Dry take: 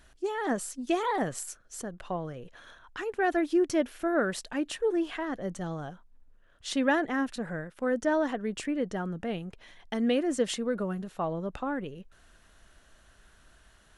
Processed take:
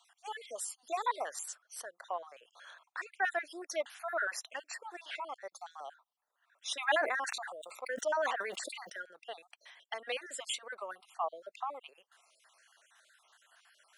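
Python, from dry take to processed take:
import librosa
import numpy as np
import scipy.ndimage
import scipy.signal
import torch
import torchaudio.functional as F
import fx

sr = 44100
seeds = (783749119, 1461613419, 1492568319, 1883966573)

y = fx.spec_dropout(x, sr, seeds[0], share_pct=46)
y = scipy.signal.sosfilt(scipy.signal.butter(4, 670.0, 'highpass', fs=sr, output='sos'), y)
y = fx.sustainer(y, sr, db_per_s=30.0, at=(6.78, 8.96), fade=0.02)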